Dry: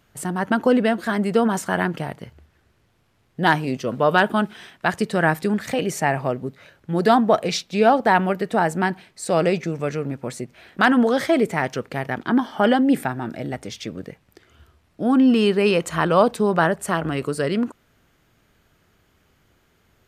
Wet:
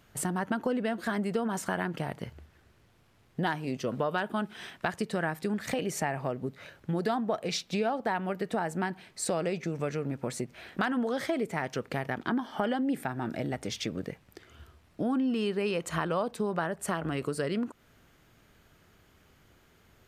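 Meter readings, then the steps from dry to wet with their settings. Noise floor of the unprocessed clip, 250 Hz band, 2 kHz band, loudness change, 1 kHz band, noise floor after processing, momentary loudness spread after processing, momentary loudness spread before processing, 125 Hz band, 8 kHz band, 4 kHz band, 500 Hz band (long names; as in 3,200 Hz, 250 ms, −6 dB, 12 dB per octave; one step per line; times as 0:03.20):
−63 dBFS, −11.0 dB, −11.5 dB, −11.5 dB, −12.0 dB, −63 dBFS, 6 LU, 13 LU, −8.5 dB, −4.5 dB, −9.0 dB, −11.0 dB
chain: downward compressor 4 to 1, threshold −29 dBFS, peak gain reduction 15.5 dB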